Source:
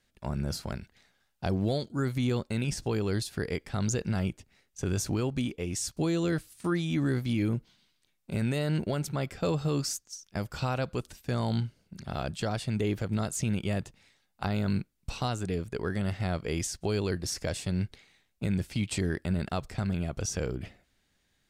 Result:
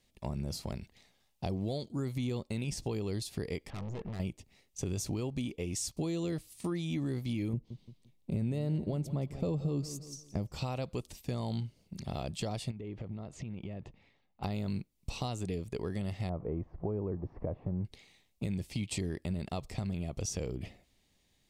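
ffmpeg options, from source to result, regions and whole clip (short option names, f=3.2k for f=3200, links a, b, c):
-filter_complex "[0:a]asettb=1/sr,asplit=3[a][b][c];[a]atrim=end=3.704[d];[b]atrim=start=3.7:end=4.2,asetpts=PTS-STARTPTS,afade=t=in:d=0.004:c=qsin,afade=t=out:st=0.496:d=0.004:c=qsin,lowpass=f=1.4k:t=q:w=1.9,aeval=exprs='(tanh(79.4*val(0)+0.55)-tanh(0.55))/79.4':c=same[e];[c]atrim=start=4.196[f];[d][e]acrossfade=d=0.004:c1=hsin:c2=qsin[g];[g][f]acrossfade=d=0.004:c1=qsin:c2=hsin,asettb=1/sr,asplit=3[h][i][j];[h]atrim=end=7.534[k];[i]atrim=start=7.53:end=10.53,asetpts=PTS-STARTPTS,afade=t=in:d=0.004:c=qsin,afade=t=out:st=2.996:d=0.004:c=qsin,tiltshelf=f=740:g=6.5,aecho=1:1:173|346|519:0.158|0.0444|0.0124,atrim=end_sample=132300[l];[j]atrim=start=10.526[m];[k][l]acrossfade=d=0.004:c1=hsin:c2=qsin[n];[n][m]acrossfade=d=0.004:c1=qsin:c2=hsin,asettb=1/sr,asplit=3[o][p][q];[o]atrim=end=12.714[r];[p]atrim=start=12.71:end=14.43,asetpts=PTS-STARTPTS,afade=t=in:d=0.004:c=qsin,afade=t=out:st=1.716:d=0.004:c=qsin,lowpass=2.2k,acompressor=threshold=-37dB:ratio=10:attack=3.2:release=140:knee=1:detection=peak[s];[q]atrim=start=14.426[t];[r][s]acrossfade=d=0.004:c1=hsin:c2=qsin[u];[u][t]acrossfade=d=0.004:c1=qsin:c2=hsin,asettb=1/sr,asplit=3[v][w][x];[v]atrim=end=16.294[y];[w]atrim=start=16.29:end=17.85,asetpts=PTS-STARTPTS,afade=t=in:d=0.004:c=qsin,afade=t=out:st=1.556:d=0.004:c=qsin,aeval=exprs='val(0)+0.5*0.00631*sgn(val(0))':c=same,lowpass=f=1.2k:w=0.5412,lowpass=f=1.2k:w=1.3066[z];[x]atrim=start=17.846[aa];[y][z]acrossfade=d=0.004:c1=hsin:c2=qsin[ab];[ab][aa]acrossfade=d=0.004:c1=qsin:c2=hsin,equalizer=f=1.5k:t=o:w=0.41:g=-14.5,acompressor=threshold=-36dB:ratio=2.5,volume=1.5dB"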